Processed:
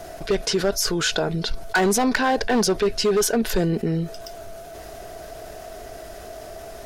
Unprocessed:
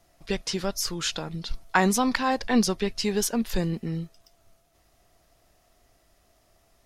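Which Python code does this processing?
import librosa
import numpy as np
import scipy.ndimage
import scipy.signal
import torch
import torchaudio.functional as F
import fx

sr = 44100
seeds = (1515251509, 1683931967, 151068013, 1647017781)

y = fx.small_body(x, sr, hz=(430.0, 640.0, 1500.0), ring_ms=30, db=12)
y = np.clip(10.0 ** (16.0 / 20.0) * y, -1.0, 1.0) / 10.0 ** (16.0 / 20.0)
y = fx.env_flatten(y, sr, amount_pct=50)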